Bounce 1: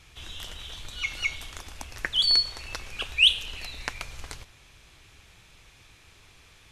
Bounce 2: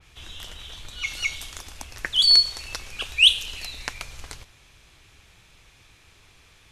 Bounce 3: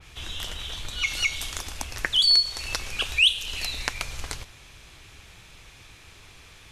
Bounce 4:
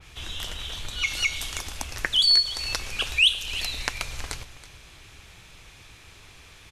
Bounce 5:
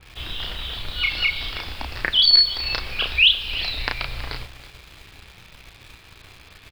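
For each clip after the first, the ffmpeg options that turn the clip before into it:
-af "adynamicequalizer=threshold=0.0141:dfrequency=3300:dqfactor=0.7:tfrequency=3300:tqfactor=0.7:attack=5:release=100:ratio=0.375:range=4:mode=boostabove:tftype=highshelf"
-af "acompressor=threshold=-29dB:ratio=2,volume=5.5dB"
-af "aecho=1:1:325:0.158"
-filter_complex "[0:a]aresample=11025,aresample=44100,asplit=2[a][b];[b]adelay=33,volume=-3.5dB[c];[a][c]amix=inputs=2:normalize=0,asplit=2[d][e];[e]acrusher=bits=6:mix=0:aa=0.000001,volume=-4.5dB[f];[d][f]amix=inputs=2:normalize=0,volume=-1.5dB"

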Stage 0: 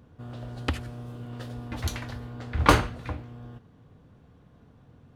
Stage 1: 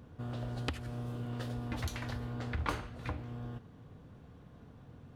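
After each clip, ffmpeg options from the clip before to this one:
-af "acompressor=threshold=-35dB:ratio=5,volume=1dB"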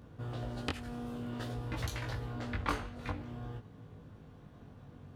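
-af "flanger=delay=18.5:depth=2.3:speed=0.52,volume=4dB"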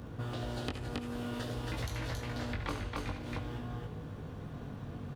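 -filter_complex "[0:a]asplit=2[a][b];[b]aecho=0:1:70|273:0.335|0.631[c];[a][c]amix=inputs=2:normalize=0,acrossover=split=830|2300[d][e][f];[d]acompressor=threshold=-45dB:ratio=4[g];[e]acompressor=threshold=-58dB:ratio=4[h];[f]acompressor=threshold=-56dB:ratio=4[i];[g][h][i]amix=inputs=3:normalize=0,volume=8.5dB"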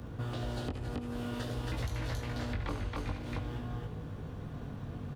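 -filter_complex "[0:a]lowshelf=f=88:g=5,acrossover=split=230|1100[a][b][c];[c]alimiter=level_in=9.5dB:limit=-24dB:level=0:latency=1:release=249,volume=-9.5dB[d];[a][b][d]amix=inputs=3:normalize=0"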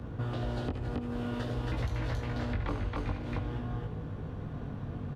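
-af "lowpass=f=2.5k:p=1,volume=3dB"

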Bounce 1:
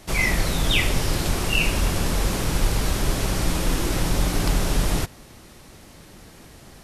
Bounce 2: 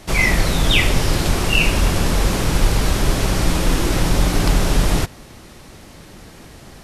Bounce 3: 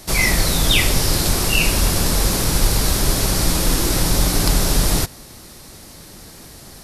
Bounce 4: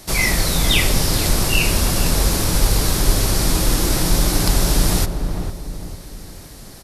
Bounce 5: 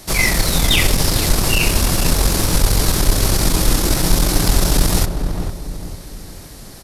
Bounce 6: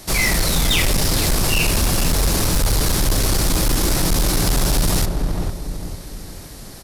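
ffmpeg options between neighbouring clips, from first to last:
-af "highshelf=f=8.3k:g=-5,volume=5.5dB"
-af "aexciter=amount=2.7:drive=4.5:freq=4k,volume=-1.5dB"
-filter_complex "[0:a]asplit=2[a][b];[b]adelay=451,lowpass=f=880:p=1,volume=-5dB,asplit=2[c][d];[d]adelay=451,lowpass=f=880:p=1,volume=0.44,asplit=2[e][f];[f]adelay=451,lowpass=f=880:p=1,volume=0.44,asplit=2[g][h];[h]adelay=451,lowpass=f=880:p=1,volume=0.44,asplit=2[i][j];[j]adelay=451,lowpass=f=880:p=1,volume=0.44[k];[a][c][e][g][i][k]amix=inputs=6:normalize=0,volume=-1dB"
-af "aeval=exprs='(tanh(2.51*val(0)+0.5)-tanh(0.5))/2.51':c=same,volume=4dB"
-af "volume=13dB,asoftclip=hard,volume=-13dB"

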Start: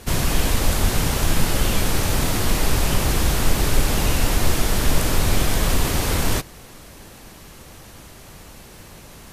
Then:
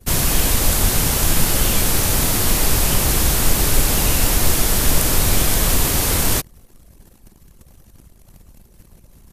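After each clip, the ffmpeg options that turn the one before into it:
-af "highshelf=f=6.5k:g=11,anlmdn=2.51,volume=1dB"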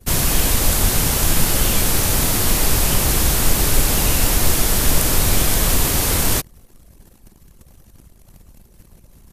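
-af anull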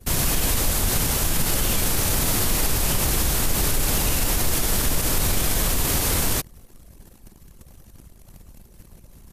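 -af "alimiter=limit=-11.5dB:level=0:latency=1:release=80"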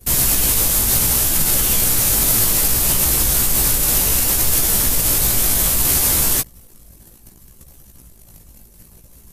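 -af "flanger=delay=15:depth=3.6:speed=0.65,crystalizer=i=1.5:c=0,volume=3.5dB"

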